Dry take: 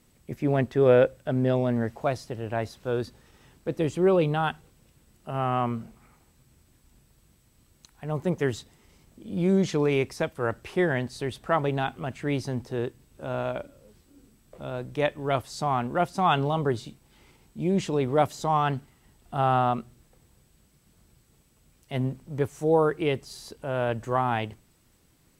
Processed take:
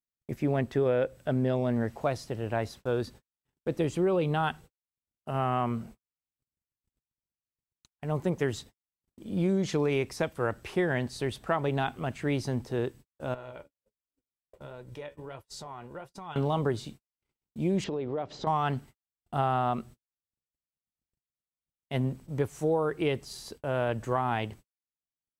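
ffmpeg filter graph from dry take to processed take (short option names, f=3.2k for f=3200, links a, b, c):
-filter_complex "[0:a]asettb=1/sr,asplit=3[a][b][c];[a]atrim=end=13.344[d];[b]atrim=start=13.34:end=16.36,asetpts=PTS-STARTPTS,afade=t=in:d=0.004:c=qsin,afade=t=out:st=3.016:d=0.004:c=qsin,acompressor=threshold=-35dB:ratio=5:attack=3.2:release=140:knee=1:detection=peak,aecho=1:1:2.1:0.35,atrim=end_sample=133182,flanger=delay=4.4:depth=9.8:regen=54:speed=1.4:shape=sinusoidal[e];[c]atrim=start=16.356[f];[d][e]acrossfade=d=0.004:c1=hsin:c2=qsin[g];[g][f]acrossfade=d=0.004:c1=qsin:c2=hsin,asettb=1/sr,asplit=3[h][i][j];[h]atrim=end=17.844[k];[i]atrim=start=17.84:end=18.47,asetpts=PTS-STARTPTS,afade=t=in:d=0.004:c=qsin,afade=t=out:st=0.626:d=0.004:c=qsin,lowpass=f=4.8k:w=0.5412,lowpass=f=4.8k:w=1.3066,equalizer=f=440:w=0.76:g=7,acompressor=threshold=-30dB:ratio=6:attack=3.2:release=140:knee=1:detection=peak[l];[j]atrim=start=18.466[m];[k][l]acrossfade=d=0.004:c1=hsin:c2=qsin[n];[n][m]acrossfade=d=0.004:c1=qsin:c2=hsin,acompressor=mode=upward:threshold=-42dB:ratio=2.5,agate=range=-55dB:threshold=-45dB:ratio=16:detection=peak,acompressor=threshold=-23dB:ratio=6"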